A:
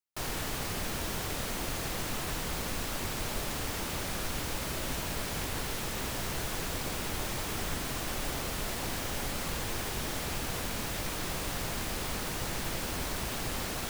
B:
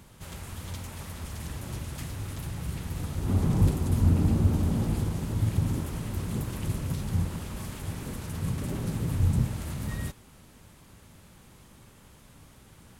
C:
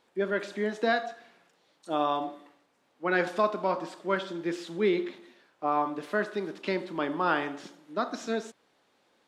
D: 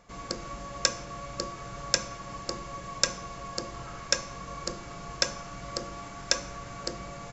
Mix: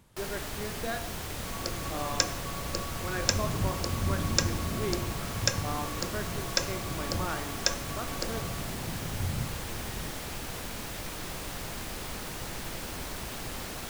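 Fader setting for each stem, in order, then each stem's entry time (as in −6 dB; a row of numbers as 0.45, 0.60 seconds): −3.0, −8.5, −9.5, −1.5 decibels; 0.00, 0.00, 0.00, 1.35 seconds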